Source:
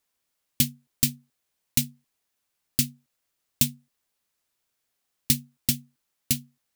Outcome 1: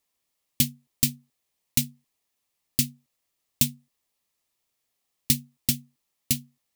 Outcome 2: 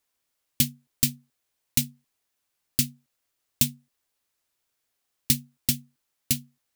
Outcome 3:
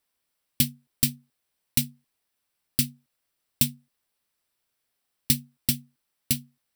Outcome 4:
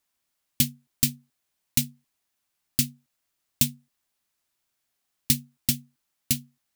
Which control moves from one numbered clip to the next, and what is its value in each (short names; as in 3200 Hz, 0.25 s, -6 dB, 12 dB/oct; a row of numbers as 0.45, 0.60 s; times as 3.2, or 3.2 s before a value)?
notch, frequency: 1500, 190, 6700, 480 Hz